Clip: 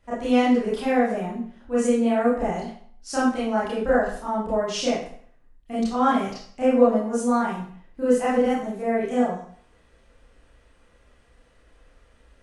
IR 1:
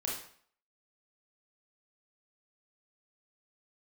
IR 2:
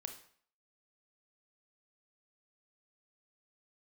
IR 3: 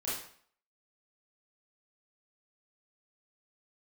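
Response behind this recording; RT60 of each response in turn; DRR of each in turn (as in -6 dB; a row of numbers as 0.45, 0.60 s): 3; 0.55, 0.55, 0.55 s; -4.0, 5.5, -9.5 dB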